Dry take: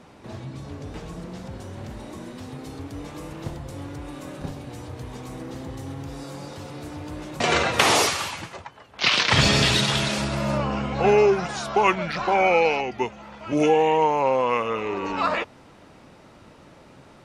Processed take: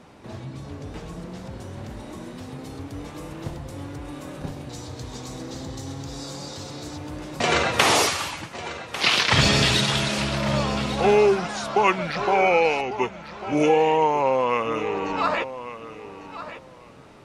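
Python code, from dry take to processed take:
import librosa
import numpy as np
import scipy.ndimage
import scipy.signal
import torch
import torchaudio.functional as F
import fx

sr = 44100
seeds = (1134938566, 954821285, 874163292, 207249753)

y = fx.band_shelf(x, sr, hz=5300.0, db=9.5, octaves=1.3, at=(4.69, 6.98))
y = fx.echo_feedback(y, sr, ms=1147, feedback_pct=18, wet_db=-13.0)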